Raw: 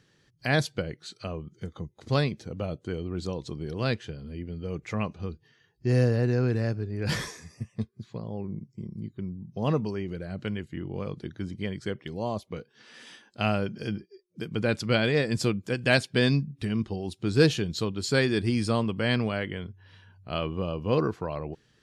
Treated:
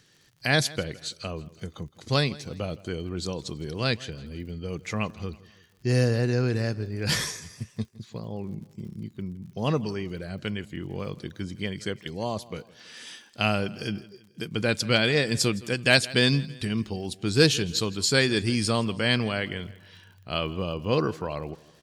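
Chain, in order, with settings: treble shelf 2.6 kHz +10.5 dB; crackle 65 per s -46 dBFS; feedback delay 164 ms, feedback 47%, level -20.5 dB

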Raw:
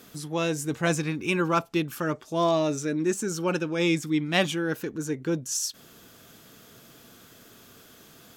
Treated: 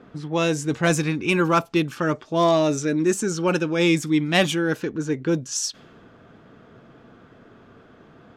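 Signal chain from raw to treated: saturation -11.5 dBFS, distortion -26 dB; level-controlled noise filter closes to 1.3 kHz, open at -22 dBFS; trim +5.5 dB

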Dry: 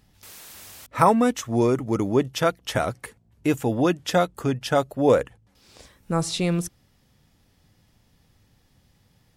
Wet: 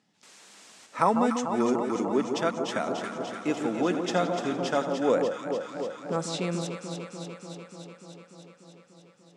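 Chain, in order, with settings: Chebyshev band-pass 190–7800 Hz, order 3; echo whose repeats swap between lows and highs 147 ms, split 1.1 kHz, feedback 86%, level -5.5 dB; 2.80–4.93 s: modulated delay 85 ms, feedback 72%, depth 65 cents, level -12.5 dB; trim -5.5 dB

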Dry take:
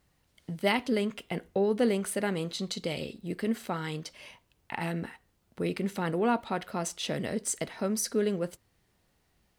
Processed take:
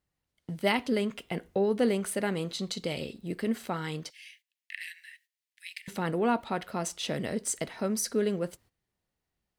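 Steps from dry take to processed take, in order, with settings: gate -57 dBFS, range -14 dB; 4.10–5.88 s: steep high-pass 1.7 kHz 96 dB/octave

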